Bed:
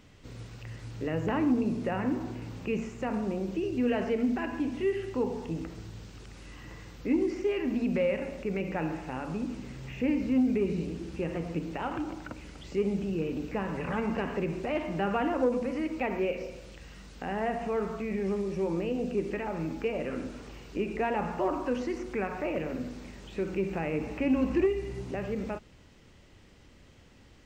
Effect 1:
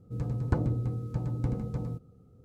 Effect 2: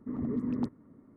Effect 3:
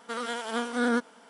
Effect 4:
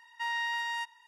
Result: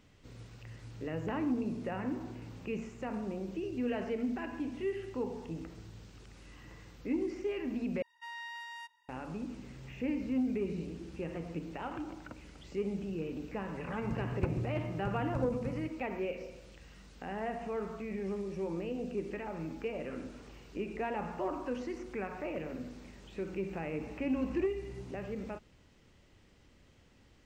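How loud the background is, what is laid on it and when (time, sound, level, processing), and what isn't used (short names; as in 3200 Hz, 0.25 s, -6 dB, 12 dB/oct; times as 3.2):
bed -6.5 dB
8.02 replace with 4 -11.5 dB
13.91 add 1 -7 dB
not used: 2, 3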